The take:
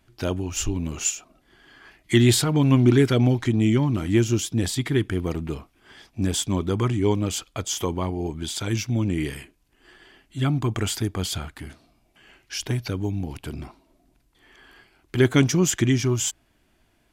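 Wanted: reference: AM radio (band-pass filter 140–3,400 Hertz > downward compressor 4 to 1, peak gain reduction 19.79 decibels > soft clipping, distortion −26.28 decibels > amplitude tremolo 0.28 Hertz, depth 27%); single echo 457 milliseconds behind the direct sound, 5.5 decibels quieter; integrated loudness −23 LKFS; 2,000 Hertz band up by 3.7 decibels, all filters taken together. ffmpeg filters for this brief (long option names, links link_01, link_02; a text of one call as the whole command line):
ffmpeg -i in.wav -af "highpass=140,lowpass=3400,equalizer=frequency=2000:width_type=o:gain=5,aecho=1:1:457:0.531,acompressor=threshold=-36dB:ratio=4,asoftclip=threshold=-23dB,tremolo=f=0.28:d=0.27,volume=17.5dB" out.wav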